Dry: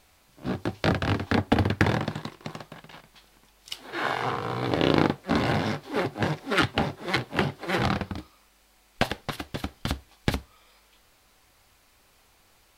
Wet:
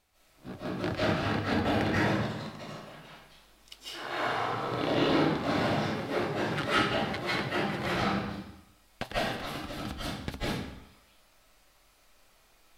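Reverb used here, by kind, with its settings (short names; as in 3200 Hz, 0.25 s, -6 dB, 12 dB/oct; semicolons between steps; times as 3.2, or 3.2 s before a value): digital reverb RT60 0.79 s, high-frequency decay 0.9×, pre-delay 0.115 s, DRR -10 dB; gain -12.5 dB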